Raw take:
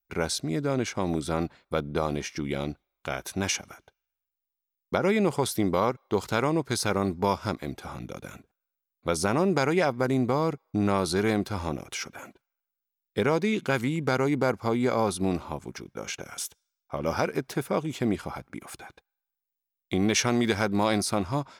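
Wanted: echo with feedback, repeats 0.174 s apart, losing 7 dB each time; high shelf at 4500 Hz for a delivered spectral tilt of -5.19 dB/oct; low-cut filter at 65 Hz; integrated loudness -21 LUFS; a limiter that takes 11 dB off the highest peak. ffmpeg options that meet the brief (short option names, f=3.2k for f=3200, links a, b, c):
-af "highpass=65,highshelf=f=4.5k:g=-5,alimiter=limit=-18.5dB:level=0:latency=1,aecho=1:1:174|348|522|696|870:0.447|0.201|0.0905|0.0407|0.0183,volume=10dB"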